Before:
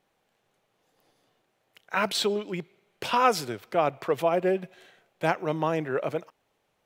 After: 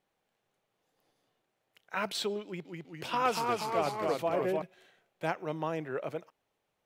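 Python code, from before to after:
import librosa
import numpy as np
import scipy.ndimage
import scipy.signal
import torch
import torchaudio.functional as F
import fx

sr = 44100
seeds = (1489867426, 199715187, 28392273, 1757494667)

y = fx.echo_pitch(x, sr, ms=198, semitones=-1, count=3, db_per_echo=-3.0, at=(2.45, 4.62))
y = y * librosa.db_to_amplitude(-7.5)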